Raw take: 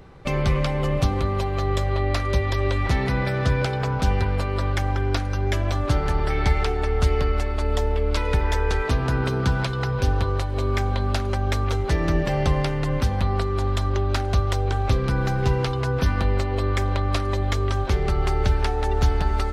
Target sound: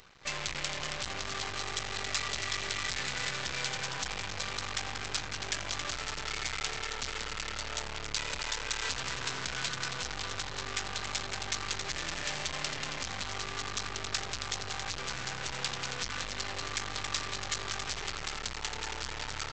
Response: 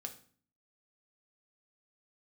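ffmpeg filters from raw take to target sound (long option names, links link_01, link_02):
-filter_complex "[0:a]dynaudnorm=framelen=180:gausssize=3:maxgain=9dB,asplit=6[link_01][link_02][link_03][link_04][link_05][link_06];[link_02]adelay=274,afreqshift=36,volume=-9dB[link_07];[link_03]adelay=548,afreqshift=72,volume=-15.7dB[link_08];[link_04]adelay=822,afreqshift=108,volume=-22.5dB[link_09];[link_05]adelay=1096,afreqshift=144,volume=-29.2dB[link_10];[link_06]adelay=1370,afreqshift=180,volume=-36dB[link_11];[link_01][link_07][link_08][link_09][link_10][link_11]amix=inputs=6:normalize=0,aeval=exprs='(tanh(11.2*val(0)+0.3)-tanh(0.3))/11.2':channel_layout=same,highshelf=frequency=4200:gain=6,aresample=16000,aeval=exprs='max(val(0),0)':channel_layout=same,aresample=44100,tiltshelf=frequency=970:gain=-10,volume=-4.5dB"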